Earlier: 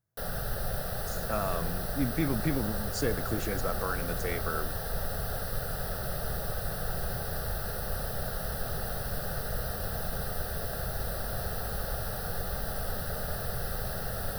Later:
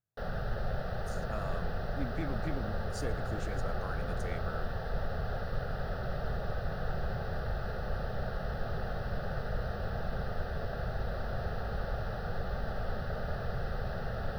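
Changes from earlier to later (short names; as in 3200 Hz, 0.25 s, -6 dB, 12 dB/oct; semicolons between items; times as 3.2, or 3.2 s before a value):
speech -9.0 dB; background: add air absorption 260 m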